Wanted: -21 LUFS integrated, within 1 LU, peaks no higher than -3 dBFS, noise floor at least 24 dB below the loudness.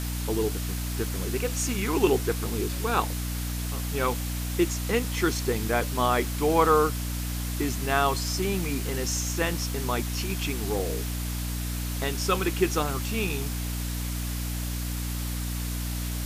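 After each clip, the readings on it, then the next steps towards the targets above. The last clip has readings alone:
hum 60 Hz; highest harmonic 300 Hz; hum level -29 dBFS; noise floor -31 dBFS; noise floor target -52 dBFS; loudness -27.5 LUFS; peak level -7.5 dBFS; loudness target -21.0 LUFS
-> hum notches 60/120/180/240/300 Hz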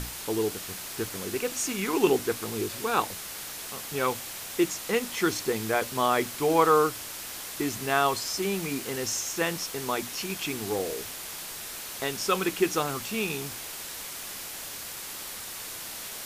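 hum not found; noise floor -39 dBFS; noise floor target -53 dBFS
-> noise reduction 14 dB, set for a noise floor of -39 dBFS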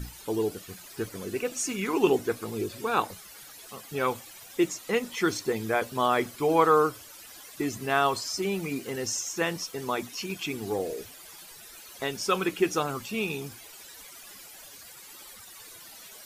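noise floor -48 dBFS; noise floor target -53 dBFS
-> noise reduction 6 dB, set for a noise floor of -48 dBFS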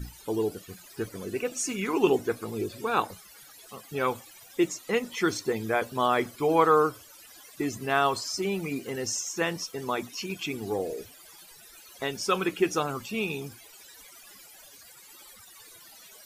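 noise floor -51 dBFS; noise floor target -53 dBFS
-> noise reduction 6 dB, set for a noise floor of -51 dBFS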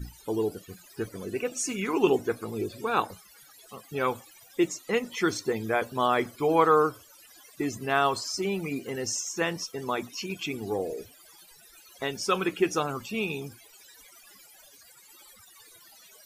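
noise floor -55 dBFS; loudness -28.5 LUFS; peak level -8.5 dBFS; loudness target -21.0 LUFS
-> trim +7.5 dB; peak limiter -3 dBFS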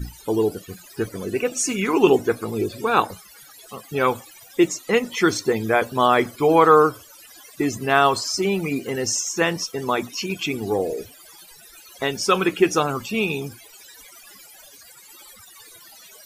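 loudness -21.0 LUFS; peak level -3.0 dBFS; noise floor -47 dBFS

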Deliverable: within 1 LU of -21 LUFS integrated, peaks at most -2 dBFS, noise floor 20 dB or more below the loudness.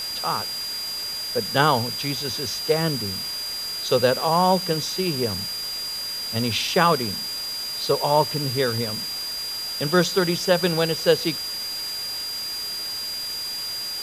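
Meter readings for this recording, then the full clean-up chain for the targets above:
steady tone 4.8 kHz; tone level -28 dBFS; noise floor -30 dBFS; noise floor target -43 dBFS; loudness -23.0 LUFS; peak level -2.0 dBFS; loudness target -21.0 LUFS
-> band-stop 4.8 kHz, Q 30; noise print and reduce 13 dB; trim +2 dB; peak limiter -2 dBFS

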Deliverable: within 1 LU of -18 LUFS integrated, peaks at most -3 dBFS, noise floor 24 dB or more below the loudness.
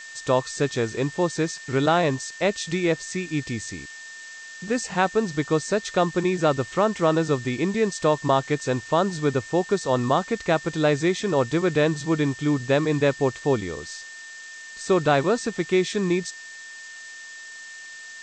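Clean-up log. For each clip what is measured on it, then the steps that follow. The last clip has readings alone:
steady tone 1.8 kHz; tone level -39 dBFS; noise floor -41 dBFS; noise floor target -48 dBFS; loudness -23.5 LUFS; peak level -7.0 dBFS; loudness target -18.0 LUFS
-> band-stop 1.8 kHz, Q 30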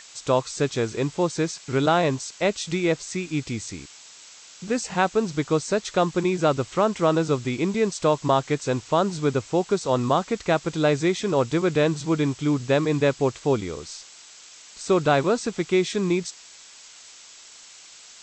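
steady tone not found; noise floor -47 dBFS; noise floor target -48 dBFS
-> noise print and reduce 6 dB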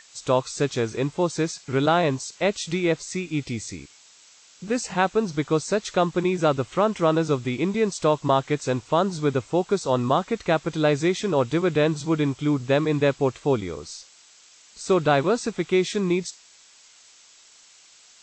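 noise floor -53 dBFS; loudness -23.5 LUFS; peak level -7.5 dBFS; loudness target -18.0 LUFS
-> trim +5.5 dB; peak limiter -3 dBFS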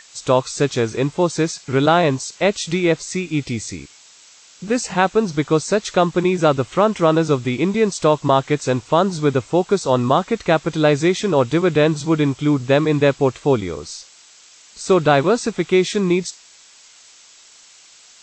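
loudness -18.5 LUFS; peak level -3.0 dBFS; noise floor -48 dBFS

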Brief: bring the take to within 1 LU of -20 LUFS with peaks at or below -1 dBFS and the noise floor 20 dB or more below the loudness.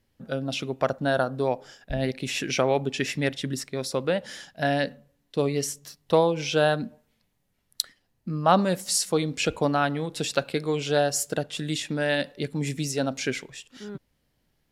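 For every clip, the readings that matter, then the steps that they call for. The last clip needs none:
loudness -26.5 LUFS; peak level -4.5 dBFS; loudness target -20.0 LUFS
-> trim +6.5 dB; peak limiter -1 dBFS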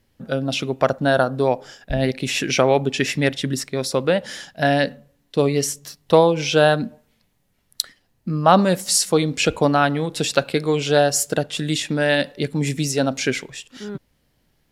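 loudness -20.0 LUFS; peak level -1.0 dBFS; noise floor -66 dBFS

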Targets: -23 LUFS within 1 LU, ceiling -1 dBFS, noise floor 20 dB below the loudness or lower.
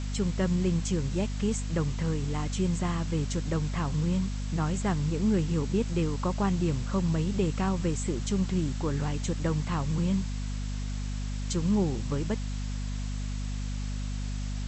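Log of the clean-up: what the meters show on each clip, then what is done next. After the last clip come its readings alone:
hum 50 Hz; highest harmonic 250 Hz; hum level -30 dBFS; noise floor -33 dBFS; noise floor target -50 dBFS; loudness -30.0 LUFS; peak level -14.5 dBFS; loudness target -23.0 LUFS
-> de-hum 50 Hz, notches 5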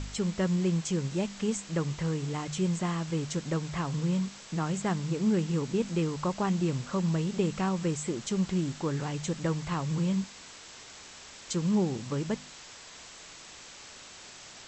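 hum not found; noise floor -49 dBFS; noise floor target -51 dBFS
-> noise reduction 6 dB, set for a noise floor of -49 dBFS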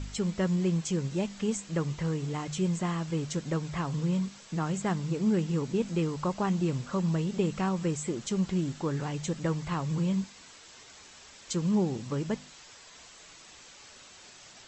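noise floor -52 dBFS; loudness -30.5 LUFS; peak level -16.0 dBFS; loudness target -23.0 LUFS
-> trim +7.5 dB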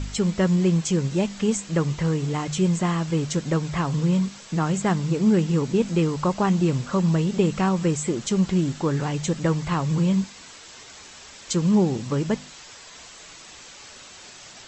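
loudness -23.0 LUFS; peak level -8.5 dBFS; noise floor -45 dBFS

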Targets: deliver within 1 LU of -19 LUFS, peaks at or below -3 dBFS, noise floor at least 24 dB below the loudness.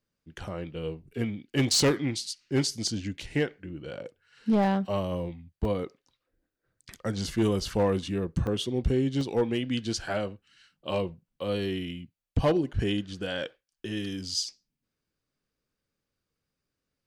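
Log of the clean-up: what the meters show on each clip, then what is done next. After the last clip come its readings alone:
clipped samples 0.5%; clipping level -18.0 dBFS; dropouts 3; longest dropout 1.7 ms; loudness -29.5 LUFS; peak level -18.0 dBFS; loudness target -19.0 LUFS
-> clip repair -18 dBFS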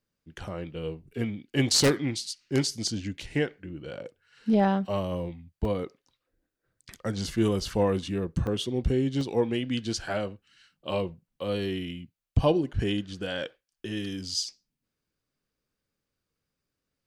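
clipped samples 0.0%; dropouts 3; longest dropout 1.7 ms
-> interpolate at 5.65/8.47/9.21 s, 1.7 ms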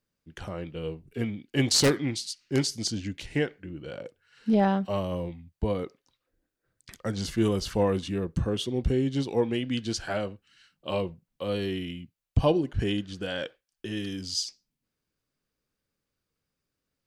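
dropouts 0; loudness -29.0 LUFS; peak level -9.0 dBFS; loudness target -19.0 LUFS
-> trim +10 dB; peak limiter -3 dBFS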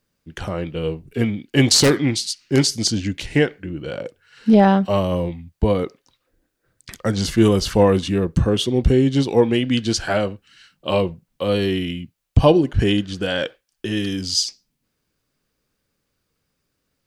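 loudness -19.5 LUFS; peak level -3.0 dBFS; noise floor -75 dBFS

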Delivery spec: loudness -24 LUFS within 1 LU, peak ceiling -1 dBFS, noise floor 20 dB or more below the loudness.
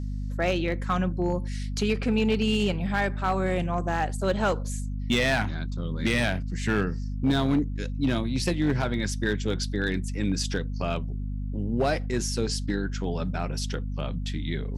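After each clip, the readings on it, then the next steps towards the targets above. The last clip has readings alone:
clipped samples 0.7%; clipping level -17.0 dBFS; hum 50 Hz; highest harmonic 250 Hz; hum level -28 dBFS; loudness -27.5 LUFS; peak level -17.0 dBFS; loudness target -24.0 LUFS
-> clip repair -17 dBFS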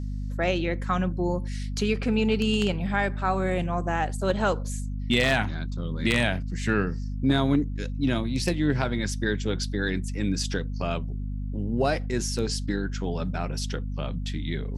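clipped samples 0.0%; hum 50 Hz; highest harmonic 250 Hz; hum level -28 dBFS
-> de-hum 50 Hz, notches 5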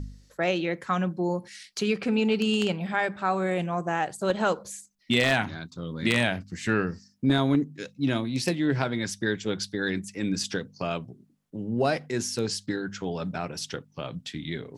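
hum not found; loudness -28.0 LUFS; peak level -7.5 dBFS; loudness target -24.0 LUFS
-> trim +4 dB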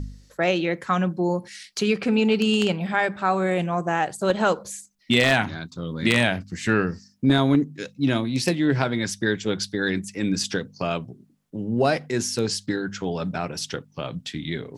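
loudness -24.0 LUFS; peak level -3.5 dBFS; noise floor -59 dBFS

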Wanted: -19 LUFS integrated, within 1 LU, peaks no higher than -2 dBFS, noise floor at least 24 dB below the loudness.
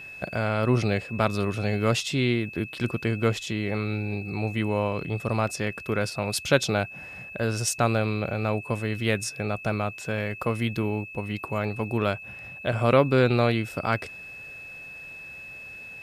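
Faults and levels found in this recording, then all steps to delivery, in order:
steady tone 2.6 kHz; tone level -39 dBFS; loudness -26.5 LUFS; peak level -7.5 dBFS; loudness target -19.0 LUFS
-> band-stop 2.6 kHz, Q 30; trim +7.5 dB; peak limiter -2 dBFS

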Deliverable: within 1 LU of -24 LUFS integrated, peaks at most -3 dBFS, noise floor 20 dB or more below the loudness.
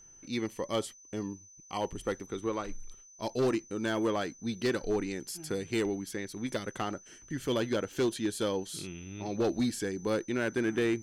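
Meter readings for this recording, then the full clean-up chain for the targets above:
clipped samples 1.0%; clipping level -23.0 dBFS; steady tone 6.1 kHz; tone level -53 dBFS; loudness -33.5 LUFS; peak level -23.0 dBFS; loudness target -24.0 LUFS
-> clip repair -23 dBFS; band-stop 6.1 kHz, Q 30; trim +9.5 dB

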